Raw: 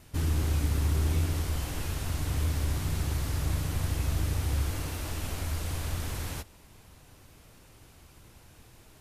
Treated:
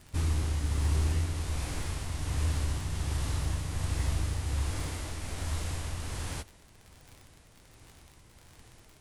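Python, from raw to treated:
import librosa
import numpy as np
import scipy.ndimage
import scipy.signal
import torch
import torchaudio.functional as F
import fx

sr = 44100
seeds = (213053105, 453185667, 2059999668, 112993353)

y = fx.dmg_crackle(x, sr, seeds[0], per_s=44.0, level_db=-39.0)
y = fx.formant_shift(y, sr, semitones=-4)
y = fx.tremolo_shape(y, sr, shape='triangle', hz=1.3, depth_pct=35)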